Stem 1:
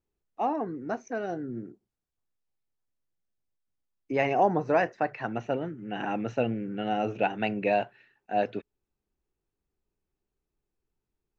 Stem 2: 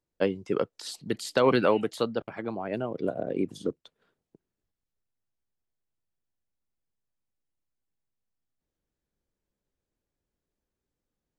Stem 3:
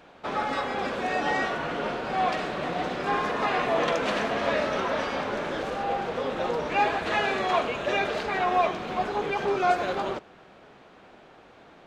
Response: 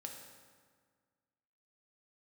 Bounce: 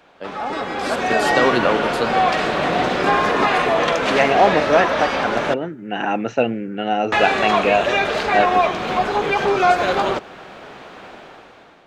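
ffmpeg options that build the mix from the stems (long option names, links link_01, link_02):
-filter_complex "[0:a]equalizer=frequency=110:width_type=o:width=0.77:gain=-6.5,volume=-0.5dB[link_01];[1:a]volume=-6dB[link_02];[2:a]acrossover=split=160[link_03][link_04];[link_04]acompressor=threshold=-34dB:ratio=1.5[link_05];[link_03][link_05]amix=inputs=2:normalize=0,volume=1.5dB,asplit=3[link_06][link_07][link_08];[link_06]atrim=end=5.54,asetpts=PTS-STARTPTS,afade=type=out:start_time=5.536:duration=0.004:curve=hsin[link_09];[link_07]atrim=start=5.54:end=7.12,asetpts=PTS-STARTPTS,volume=0[link_10];[link_08]atrim=start=7.12,asetpts=PTS-STARTPTS,afade=type=in:duration=0.004:curve=hsin[link_11];[link_09][link_10][link_11]concat=n=3:v=0:a=1,asplit=2[link_12][link_13];[link_13]volume=-23dB[link_14];[3:a]atrim=start_sample=2205[link_15];[link_14][link_15]afir=irnorm=-1:irlink=0[link_16];[link_01][link_02][link_12][link_16]amix=inputs=4:normalize=0,lowshelf=frequency=470:gain=-5,dynaudnorm=framelen=240:gausssize=7:maxgain=14dB"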